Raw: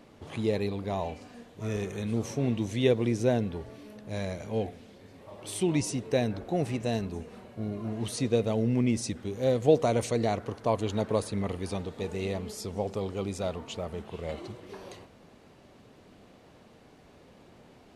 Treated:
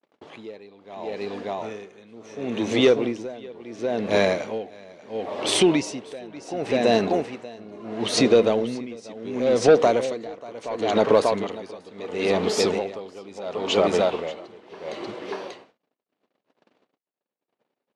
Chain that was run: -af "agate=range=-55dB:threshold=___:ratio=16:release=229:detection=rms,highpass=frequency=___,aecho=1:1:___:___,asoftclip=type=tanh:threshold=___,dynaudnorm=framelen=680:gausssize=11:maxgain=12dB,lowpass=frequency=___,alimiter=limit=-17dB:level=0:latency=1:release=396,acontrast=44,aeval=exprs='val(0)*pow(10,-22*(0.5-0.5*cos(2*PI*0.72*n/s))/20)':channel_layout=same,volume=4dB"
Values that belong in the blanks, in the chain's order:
-50dB, 310, 588, 0.562, -18dB, 4.9k